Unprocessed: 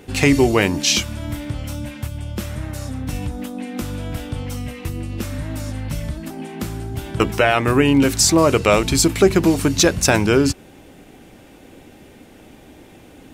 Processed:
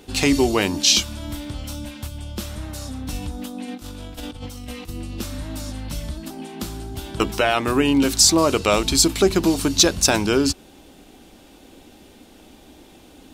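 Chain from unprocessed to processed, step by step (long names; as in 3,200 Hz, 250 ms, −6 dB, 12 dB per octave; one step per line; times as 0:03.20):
octave-band graphic EQ 125/500/2,000/4,000 Hz −10/−4/−7/+5 dB
0:03.68–0:04.89: compressor whose output falls as the input rises −33 dBFS, ratio −0.5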